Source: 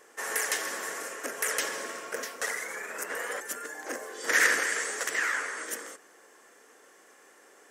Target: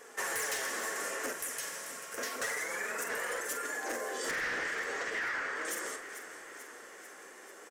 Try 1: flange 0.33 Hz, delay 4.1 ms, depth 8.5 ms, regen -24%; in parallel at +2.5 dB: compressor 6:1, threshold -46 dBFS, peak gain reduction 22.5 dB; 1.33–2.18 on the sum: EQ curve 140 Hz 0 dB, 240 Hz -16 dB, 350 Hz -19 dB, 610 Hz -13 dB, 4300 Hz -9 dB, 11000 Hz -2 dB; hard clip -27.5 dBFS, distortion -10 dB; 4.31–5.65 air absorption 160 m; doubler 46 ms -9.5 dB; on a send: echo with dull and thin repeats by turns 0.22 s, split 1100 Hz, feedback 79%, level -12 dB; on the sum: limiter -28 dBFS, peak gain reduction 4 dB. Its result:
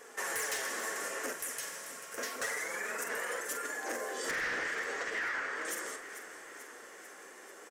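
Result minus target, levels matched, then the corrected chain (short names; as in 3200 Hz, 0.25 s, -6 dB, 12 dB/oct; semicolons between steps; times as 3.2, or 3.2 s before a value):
compressor: peak gain reduction +6 dB
flange 0.33 Hz, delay 4.1 ms, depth 8.5 ms, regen -24%; in parallel at +2.5 dB: compressor 6:1, threshold -39 dBFS, peak gain reduction 16.5 dB; 1.33–2.18 on the sum: EQ curve 140 Hz 0 dB, 240 Hz -16 dB, 350 Hz -19 dB, 610 Hz -13 dB, 4300 Hz -9 dB, 11000 Hz -2 dB; hard clip -27.5 dBFS, distortion -9 dB; 4.31–5.65 air absorption 160 m; doubler 46 ms -9.5 dB; on a send: echo with dull and thin repeats by turns 0.22 s, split 1100 Hz, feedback 79%, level -12 dB; on the sum: limiter -28 dBFS, peak gain reduction 4.5 dB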